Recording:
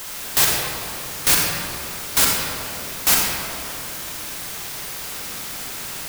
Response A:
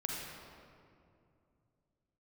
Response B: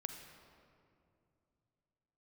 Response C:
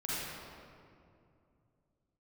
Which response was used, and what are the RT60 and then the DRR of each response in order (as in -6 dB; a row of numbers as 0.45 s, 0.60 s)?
A; 2.5 s, 2.6 s, 2.5 s; -2.0 dB, 5.5 dB, -9.0 dB